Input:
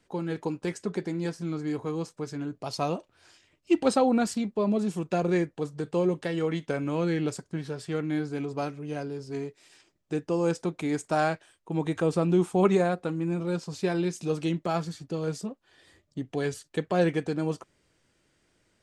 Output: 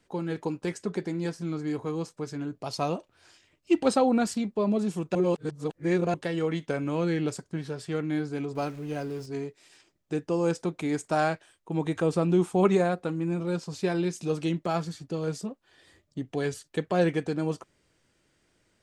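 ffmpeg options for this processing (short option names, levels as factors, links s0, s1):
-filter_complex "[0:a]asettb=1/sr,asplit=3[s0][s1][s2];[s0]atrim=end=8.554[s3];[s1]atrim=start=8.55:end=9.26,asetpts=PTS-STARTPTS,afade=t=in:d=0.004:c=qsin,afade=t=out:st=0.706:d=0.004:c=qsin,aeval=exprs='val(0)+0.5*0.00531*sgn(val(0))':c=same[s4];[s2]atrim=start=9.256[s5];[s3][s4]acrossfade=d=0.004:c1=hsin:c2=qsin[s6];[s6][s5]acrossfade=d=0.004:c1=qsin:c2=hsin,asplit=3[s7][s8][s9];[s7]atrim=end=5.152[s10];[s8]atrim=start=5.148:end=6.142,asetpts=PTS-STARTPTS,areverse[s11];[s9]atrim=start=6.138[s12];[s10][s11]acrossfade=d=0.004:c1=hsin:c2=hsin[s13];[s13][s12]acrossfade=d=0.004:c1=hsin:c2=hsin"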